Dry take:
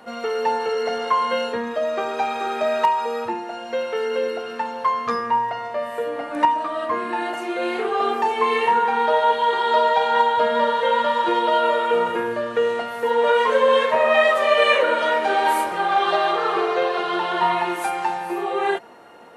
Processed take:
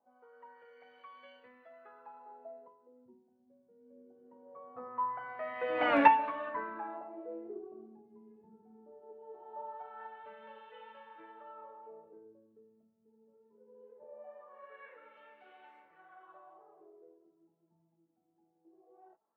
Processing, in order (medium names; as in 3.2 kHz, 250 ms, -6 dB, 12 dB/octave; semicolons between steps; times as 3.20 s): Doppler pass-by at 5.92 s, 21 m/s, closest 1.3 m; LFO low-pass sine 0.21 Hz 210–2600 Hz; trim +3 dB